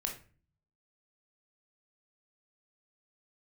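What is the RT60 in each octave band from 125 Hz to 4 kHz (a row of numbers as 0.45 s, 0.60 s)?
0.90 s, 0.65 s, 0.40 s, 0.35 s, 0.40 s, 0.30 s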